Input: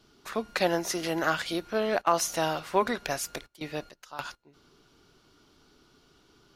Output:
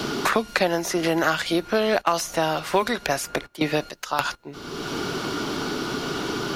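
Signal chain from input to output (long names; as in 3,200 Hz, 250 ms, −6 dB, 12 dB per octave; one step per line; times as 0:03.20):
multiband upward and downward compressor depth 100%
level +6.5 dB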